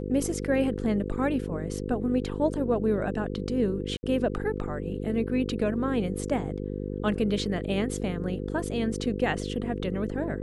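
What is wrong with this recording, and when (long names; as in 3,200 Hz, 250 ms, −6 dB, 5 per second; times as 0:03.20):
mains buzz 50 Hz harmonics 10 −33 dBFS
0:03.97–0:04.03: drop-out 60 ms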